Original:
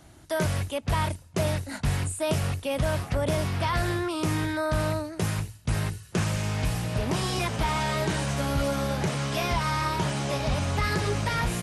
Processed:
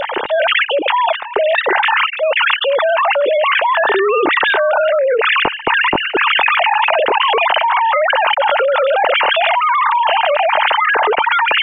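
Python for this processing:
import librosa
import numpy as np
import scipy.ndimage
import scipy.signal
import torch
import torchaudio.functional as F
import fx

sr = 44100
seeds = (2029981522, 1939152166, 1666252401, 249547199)

y = fx.sine_speech(x, sr)
y = fx.small_body(y, sr, hz=(890.0, 2800.0), ring_ms=25, db=8)
y = fx.env_flatten(y, sr, amount_pct=100)
y = F.gain(torch.from_numpy(y), -2.0).numpy()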